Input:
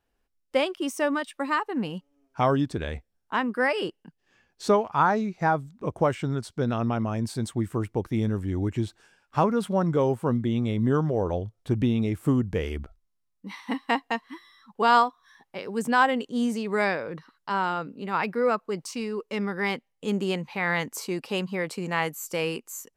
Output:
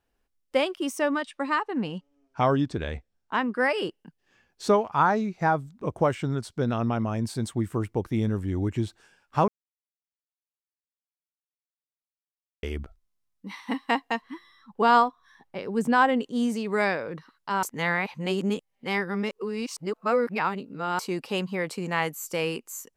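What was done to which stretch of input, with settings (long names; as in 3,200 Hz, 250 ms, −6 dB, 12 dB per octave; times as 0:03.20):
0:00.99–0:03.59: low-pass filter 7,500 Hz
0:09.48–0:12.63: silence
0:14.22–0:16.23: spectral tilt −1.5 dB per octave
0:17.63–0:20.99: reverse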